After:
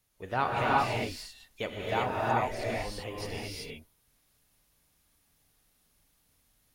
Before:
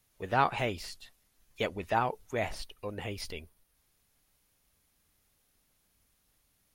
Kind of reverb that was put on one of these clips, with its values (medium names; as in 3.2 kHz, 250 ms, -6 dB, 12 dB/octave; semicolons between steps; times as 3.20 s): gated-style reverb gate 410 ms rising, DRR -4.5 dB; trim -3.5 dB